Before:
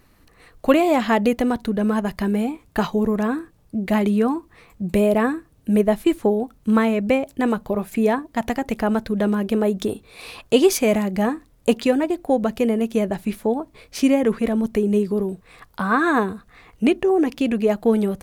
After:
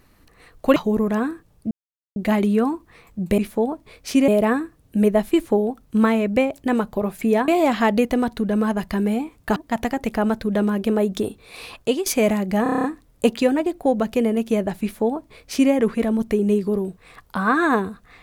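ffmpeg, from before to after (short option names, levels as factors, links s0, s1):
-filter_complex "[0:a]asplit=15[s0][s1][s2][s3][s4][s5][s6][s7][s8][s9][s10][s11][s12][s13][s14];[s0]atrim=end=0.762[s15];[s1]atrim=start=2.838:end=3.79,asetpts=PTS-STARTPTS,afade=t=out:st=0.948:d=0.004:c=hsin,apad=pad_dur=0.45[s16];[s2]atrim=start=3.79:end=5.012,asetpts=PTS-STARTPTS,afade=t=in:d=0.004:c=hsin[s17];[s3]atrim=start=13.258:end=14.162[s18];[s4]atrim=start=5.008:end=8.212[s19];[s5]atrim=start=0.758:end=2.842[s20];[s6]atrim=start=8.208:end=10.71,asetpts=PTS-STARTPTS,afade=t=out:st=2.202:d=0.3:silence=0.133352[s21];[s7]atrim=start=10.71:end=11.312,asetpts=PTS-STARTPTS,afade=t=in:d=0.004:c=hsin:silence=0.133352[s22];[s8]atrim=start=11.278:end=11.312[s23];[s9]atrim=start=11.278:end=11.312[s24];[s10]atrim=start=11.278:end=11.312[s25];[s11]atrim=start=11.278:end=11.312[s26];[s12]atrim=start=11.278:end=11.312[s27];[s13]atrim=start=11.278:end=11.312[s28];[s14]atrim=start=11.278[s29];[s16][s17]concat=n=2:v=0:a=1[s30];[s15][s30]acrossfade=d=0.004:c1=hsin:c2=hsin[s31];[s31][s18]acrossfade=d=0.004:c1=hsin:c2=hsin[s32];[s32][s19]acrossfade=d=0.004:c1=hsin:c2=hsin[s33];[s33][s20]acrossfade=d=0.004:c1=hsin:c2=hsin[s34];[s21][s22]concat=n=2:v=0:a=1[s35];[s34][s35]acrossfade=d=0.004:c1=hsin:c2=hsin[s36];[s36][s23]acrossfade=d=0.004:c1=hsin:c2=hsin[s37];[s37][s24]acrossfade=d=0.004:c1=hsin:c2=hsin[s38];[s38][s25]acrossfade=d=0.004:c1=hsin:c2=hsin[s39];[s39][s26]acrossfade=d=0.004:c1=hsin:c2=hsin[s40];[s40][s27]acrossfade=d=0.004:c1=hsin:c2=hsin[s41];[s41][s28]acrossfade=d=0.004:c1=hsin:c2=hsin[s42];[s42][s29]acrossfade=d=0.004:c1=hsin:c2=hsin"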